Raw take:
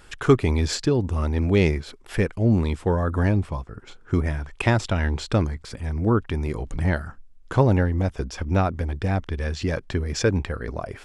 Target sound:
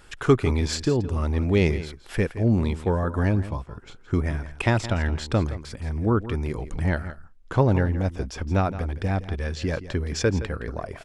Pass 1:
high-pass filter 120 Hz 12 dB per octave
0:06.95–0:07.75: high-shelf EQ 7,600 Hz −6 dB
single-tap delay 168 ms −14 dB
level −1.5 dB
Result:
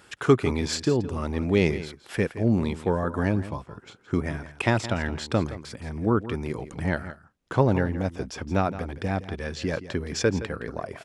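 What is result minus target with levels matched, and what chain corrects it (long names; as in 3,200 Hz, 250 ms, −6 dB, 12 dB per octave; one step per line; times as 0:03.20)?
125 Hz band −2.5 dB
0:06.95–0:07.75: high-shelf EQ 7,600 Hz −6 dB
single-tap delay 168 ms −14 dB
level −1.5 dB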